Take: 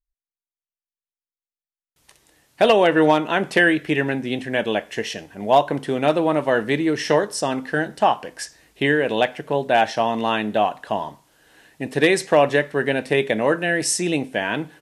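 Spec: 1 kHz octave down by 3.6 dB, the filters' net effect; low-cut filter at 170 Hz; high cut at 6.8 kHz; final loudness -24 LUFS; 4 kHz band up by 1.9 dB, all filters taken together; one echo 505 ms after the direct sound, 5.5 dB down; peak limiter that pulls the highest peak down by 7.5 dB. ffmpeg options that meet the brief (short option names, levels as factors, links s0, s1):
-af "highpass=170,lowpass=6800,equalizer=f=1000:t=o:g=-5.5,equalizer=f=4000:t=o:g=3.5,alimiter=limit=0.266:level=0:latency=1,aecho=1:1:505:0.531,volume=0.891"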